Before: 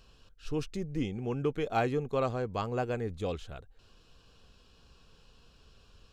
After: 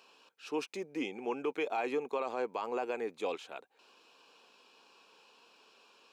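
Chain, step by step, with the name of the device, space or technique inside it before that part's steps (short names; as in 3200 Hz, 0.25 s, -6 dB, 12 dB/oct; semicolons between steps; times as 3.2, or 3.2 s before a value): laptop speaker (HPF 290 Hz 24 dB/oct; bell 910 Hz +9.5 dB 0.46 oct; bell 2400 Hz +9 dB 0.28 oct; limiter -24.5 dBFS, peak gain reduction 12 dB)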